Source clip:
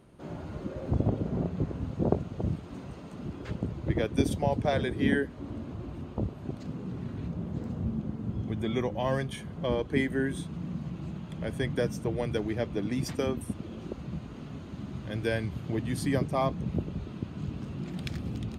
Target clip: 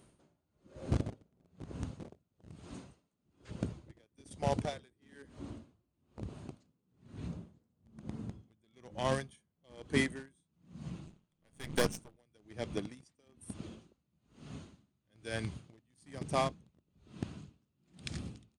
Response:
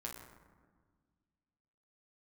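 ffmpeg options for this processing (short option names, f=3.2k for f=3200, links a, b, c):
-filter_complex "[0:a]aemphasis=mode=production:type=75fm,asplit=2[a][b];[b]acrusher=bits=3:mix=0:aa=0.000001,volume=-9dB[c];[a][c]amix=inputs=2:normalize=0,aresample=22050,aresample=44100,asettb=1/sr,asplit=3[d][e][f];[d]atrim=end=11.064[g];[e]atrim=start=11.06:end=12.17,asetpts=PTS-STARTPTS,afade=t=in:d=0.004:c=qsin,afade=t=out:st=1.106:d=0.004:c=qsin,aeval=exprs='0.224*(cos(1*acos(clip(val(0)/0.224,-1,1)))-cos(1*PI/2))+0.0562*(cos(6*acos(clip(val(0)/0.224,-1,1)))-cos(6*PI/2))':c=same[h];[f]atrim=start=12.166[i];[g][h]acrossfade=d=0.004:c1=hsin:c2=qsin[j];[j][i]acrossfade=d=0.004:c1=qsin:c2=hsin,aeval=exprs='val(0)*pow(10,-38*(0.5-0.5*cos(2*PI*1.1*n/s))/20)':c=same,volume=-4.5dB"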